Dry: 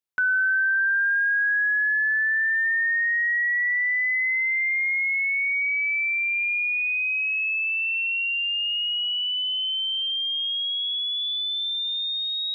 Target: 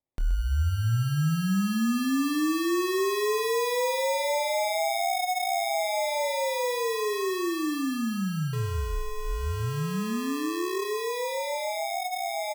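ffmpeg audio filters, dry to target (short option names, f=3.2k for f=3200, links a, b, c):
-filter_complex "[0:a]asettb=1/sr,asplit=3[a][b][c];[a]atrim=end=8.534[d];[b]atrim=start=8.53:end=10.85,asetpts=PTS-STARTPTS,afade=t=in:d=0.004:c=qsin,afade=t=out:st=2.316:d=0.004:c=qsin,aeval=exprs='val(0)+0.0251*sin(2*PI*1900*n/s)':c=same[e];[c]atrim=start=10.846[f];[d][e]acrossfade=d=0.004:c1=hsin:c2=qsin[g];[g][f]acrossfade=d=0.004:c1=qsin:c2=hsin,acrusher=samples=30:mix=1:aa=0.000001,asplit=2[h][i];[i]adelay=26,volume=-11dB[j];[h][j]amix=inputs=2:normalize=0,aecho=1:1:127:0.266,volume=-3.5dB"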